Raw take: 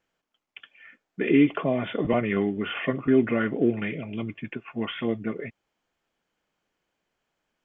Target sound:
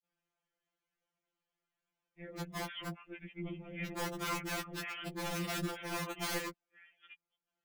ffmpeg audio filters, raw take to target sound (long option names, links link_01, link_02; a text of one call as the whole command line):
ffmpeg -i in.wav -af "areverse,equalizer=frequency=400:width=4.1:gain=-3,aeval=exprs='(mod(9.44*val(0)+1,2)-1)/9.44':channel_layout=same,afftfilt=real='hypot(re,im)*cos(2*PI*random(0))':imag='hypot(re,im)*sin(2*PI*random(1))':win_size=512:overlap=0.75,afftfilt=real='re*2.83*eq(mod(b,8),0)':imag='im*2.83*eq(mod(b,8),0)':win_size=2048:overlap=0.75,volume=-3dB" out.wav